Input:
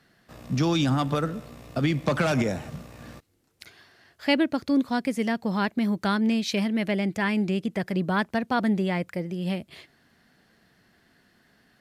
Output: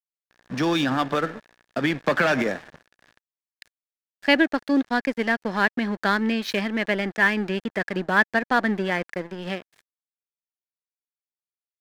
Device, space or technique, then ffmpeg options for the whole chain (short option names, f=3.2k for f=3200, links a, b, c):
pocket radio on a weak battery: -af "highpass=250,lowpass=4.5k,aeval=exprs='sgn(val(0))*max(abs(val(0))-0.00944,0)':c=same,equalizer=f=1.7k:t=o:w=0.28:g=10,volume=4.5dB"